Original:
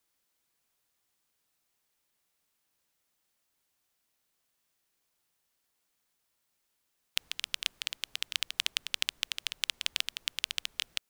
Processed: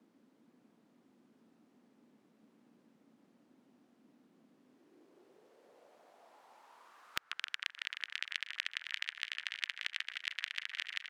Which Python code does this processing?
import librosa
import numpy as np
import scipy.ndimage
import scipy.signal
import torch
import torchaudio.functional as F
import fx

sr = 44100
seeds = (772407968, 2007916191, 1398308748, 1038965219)

y = fx.filter_sweep_bandpass(x, sr, from_hz=240.0, to_hz=1800.0, start_s=4.5, end_s=7.69, q=4.1)
y = fx.echo_alternate(y, sr, ms=154, hz=1800.0, feedback_pct=87, wet_db=-9.0)
y = fx.band_squash(y, sr, depth_pct=100)
y = y * librosa.db_to_amplitude(4.5)